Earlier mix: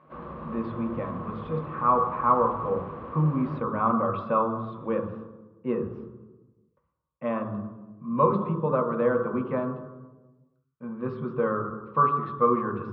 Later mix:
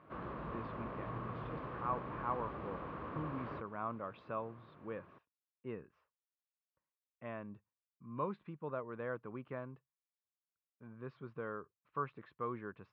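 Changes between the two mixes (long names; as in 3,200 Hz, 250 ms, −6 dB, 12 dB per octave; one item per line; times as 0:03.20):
speech −9.0 dB
reverb: off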